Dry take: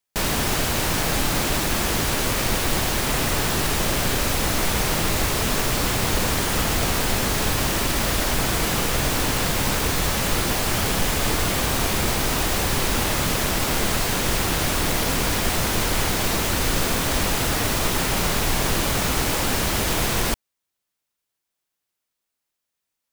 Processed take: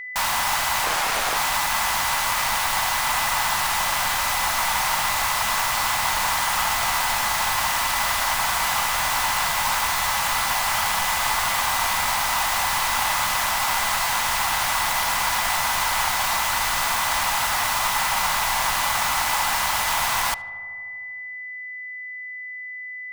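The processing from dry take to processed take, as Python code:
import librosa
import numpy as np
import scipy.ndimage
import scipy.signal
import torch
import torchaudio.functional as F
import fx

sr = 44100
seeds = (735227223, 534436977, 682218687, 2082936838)

y = fx.low_shelf_res(x, sr, hz=600.0, db=-14.0, q=3.0)
y = y + 10.0 ** (-32.0 / 20.0) * np.sin(2.0 * np.pi * 2000.0 * np.arange(len(y)) / sr)
y = fx.echo_filtered(y, sr, ms=77, feedback_pct=84, hz=2200.0, wet_db=-19)
y = fx.doppler_dist(y, sr, depth_ms=0.77, at=(0.84, 1.37))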